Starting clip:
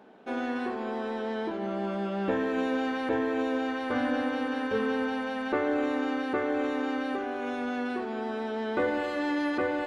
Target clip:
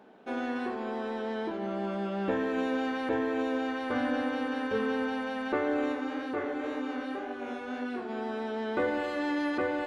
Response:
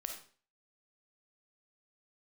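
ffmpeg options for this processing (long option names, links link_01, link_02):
-filter_complex "[0:a]asplit=3[link_01][link_02][link_03];[link_01]afade=type=out:start_time=5.92:duration=0.02[link_04];[link_02]flanger=delay=19.5:depth=7:speed=1.9,afade=type=in:start_time=5.92:duration=0.02,afade=type=out:start_time=8.08:duration=0.02[link_05];[link_03]afade=type=in:start_time=8.08:duration=0.02[link_06];[link_04][link_05][link_06]amix=inputs=3:normalize=0,volume=-1.5dB"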